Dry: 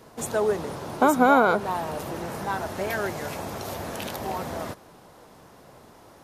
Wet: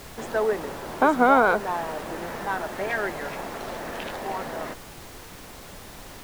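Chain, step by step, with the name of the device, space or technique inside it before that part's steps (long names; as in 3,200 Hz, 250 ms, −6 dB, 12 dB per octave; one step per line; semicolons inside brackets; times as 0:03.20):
horn gramophone (band-pass filter 220–3,500 Hz; parametric band 1,800 Hz +5 dB 0.51 octaves; tape wow and flutter; pink noise bed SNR 16 dB)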